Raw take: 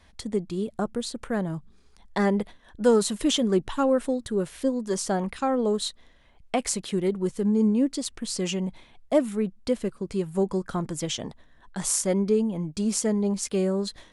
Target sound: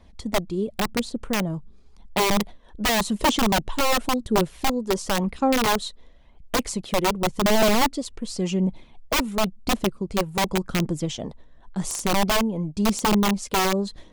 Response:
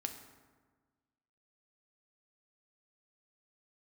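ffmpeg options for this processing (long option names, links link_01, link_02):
-af "tiltshelf=frequency=940:gain=4,aeval=exprs='(mod(5.96*val(0)+1,2)-1)/5.96':channel_layout=same,aphaser=in_gain=1:out_gain=1:delay=2.3:decay=0.31:speed=0.92:type=triangular,equalizer=frequency=100:width_type=o:width=0.67:gain=-5,equalizer=frequency=1600:width_type=o:width=0.67:gain=-5,equalizer=frequency=10000:width_type=o:width=0.67:gain=-4,volume=1dB"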